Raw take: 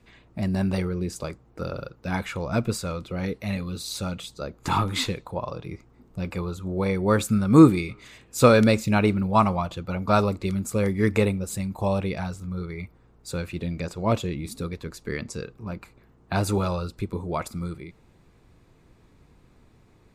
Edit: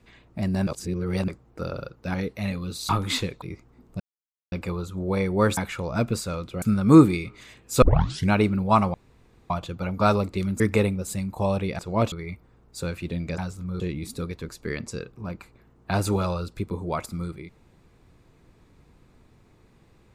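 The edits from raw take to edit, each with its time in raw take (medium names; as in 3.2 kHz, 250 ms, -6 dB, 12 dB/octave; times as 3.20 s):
0.67–1.28 s: reverse
2.14–3.19 s: move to 7.26 s
3.94–4.75 s: delete
5.28–5.63 s: delete
6.21 s: insert silence 0.52 s
8.46 s: tape start 0.49 s
9.58 s: insert room tone 0.56 s
10.68–11.02 s: delete
12.21–12.63 s: swap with 13.89–14.22 s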